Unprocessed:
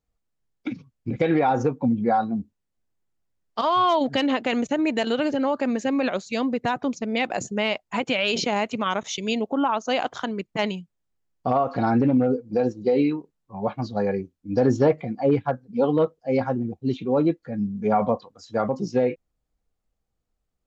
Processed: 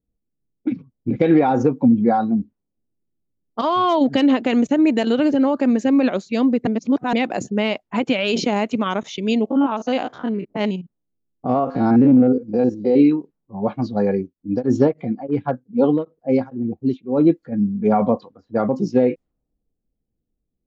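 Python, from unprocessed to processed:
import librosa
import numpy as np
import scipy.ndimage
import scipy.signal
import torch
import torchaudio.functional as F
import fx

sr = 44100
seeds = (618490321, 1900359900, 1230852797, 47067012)

y = fx.spec_steps(x, sr, hold_ms=50, at=(9.44, 12.98), fade=0.02)
y = fx.tremolo_abs(y, sr, hz=fx.line((14.16, 3.8), (17.51, 1.6)), at=(14.16, 17.51), fade=0.02)
y = fx.edit(y, sr, fx.reverse_span(start_s=6.67, length_s=0.46), tone=tone)
y = fx.env_lowpass(y, sr, base_hz=410.0, full_db=-21.5)
y = fx.peak_eq(y, sr, hz=270.0, db=8.5, octaves=1.7)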